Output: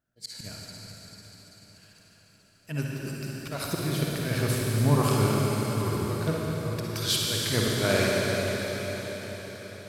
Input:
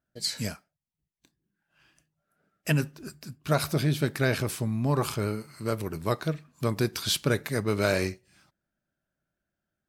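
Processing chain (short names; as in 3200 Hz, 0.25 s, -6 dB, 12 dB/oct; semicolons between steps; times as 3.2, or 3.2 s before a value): bell 110 Hz +5.5 dB 0.22 oct; auto swell 0.239 s; reverb RT60 5.7 s, pre-delay 49 ms, DRR -4 dB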